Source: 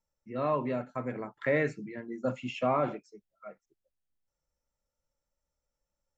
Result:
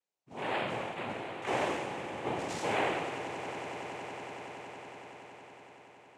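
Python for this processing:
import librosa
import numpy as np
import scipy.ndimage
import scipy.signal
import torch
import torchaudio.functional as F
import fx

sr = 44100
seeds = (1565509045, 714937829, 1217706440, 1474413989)

p1 = fx.spec_trails(x, sr, decay_s=1.61)
p2 = scipy.signal.sosfilt(scipy.signal.butter(2, 260.0, 'highpass', fs=sr, output='sos'), p1)
p3 = fx.noise_vocoder(p2, sr, seeds[0], bands=4)
p4 = p3 + fx.echo_swell(p3, sr, ms=93, loudest=8, wet_db=-17.0, dry=0)
y = p4 * librosa.db_to_amplitude(-6.0)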